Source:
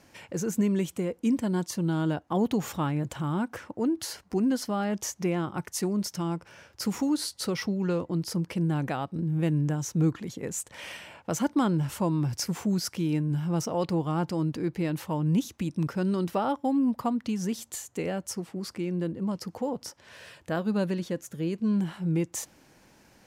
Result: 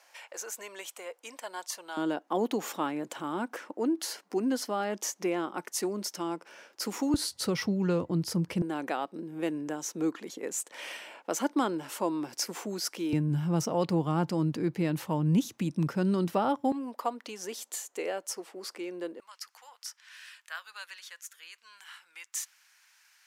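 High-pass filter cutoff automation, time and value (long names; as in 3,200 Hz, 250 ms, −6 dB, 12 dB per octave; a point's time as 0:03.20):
high-pass filter 24 dB per octave
630 Hz
from 0:01.97 270 Hz
from 0:07.14 73 Hz
from 0:08.62 290 Hz
from 0:13.13 120 Hz
from 0:16.72 380 Hz
from 0:19.20 1,300 Hz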